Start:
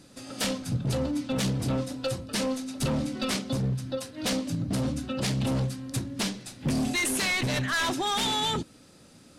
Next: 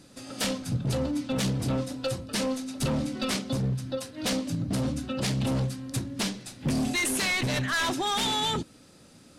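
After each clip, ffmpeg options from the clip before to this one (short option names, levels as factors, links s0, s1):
-af anull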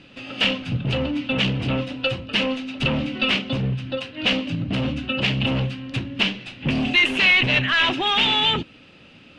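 -af "lowpass=f=2800:t=q:w=6,volume=1.58"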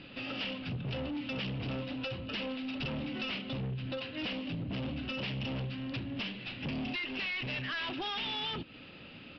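-af "acompressor=threshold=0.0355:ratio=6,aresample=11025,asoftclip=type=tanh:threshold=0.0282,aresample=44100,volume=0.841"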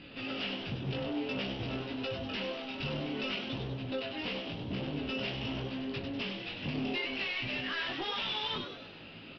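-filter_complex "[0:a]flanger=delay=18:depth=3.5:speed=0.55,asplit=7[s0][s1][s2][s3][s4][s5][s6];[s1]adelay=98,afreqshift=140,volume=0.447[s7];[s2]adelay=196,afreqshift=280,volume=0.219[s8];[s3]adelay=294,afreqshift=420,volume=0.107[s9];[s4]adelay=392,afreqshift=560,volume=0.0525[s10];[s5]adelay=490,afreqshift=700,volume=0.0257[s11];[s6]adelay=588,afreqshift=840,volume=0.0126[s12];[s0][s7][s8][s9][s10][s11][s12]amix=inputs=7:normalize=0,volume=1.41"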